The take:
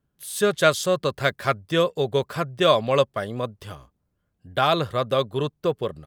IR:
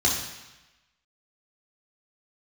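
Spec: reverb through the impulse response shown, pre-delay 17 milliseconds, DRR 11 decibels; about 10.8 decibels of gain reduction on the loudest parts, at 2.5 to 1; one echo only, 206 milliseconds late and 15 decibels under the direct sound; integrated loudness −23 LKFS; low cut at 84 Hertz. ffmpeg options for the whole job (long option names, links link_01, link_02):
-filter_complex "[0:a]highpass=84,acompressor=threshold=-30dB:ratio=2.5,aecho=1:1:206:0.178,asplit=2[link_01][link_02];[1:a]atrim=start_sample=2205,adelay=17[link_03];[link_02][link_03]afir=irnorm=-1:irlink=0,volume=-24dB[link_04];[link_01][link_04]amix=inputs=2:normalize=0,volume=8.5dB"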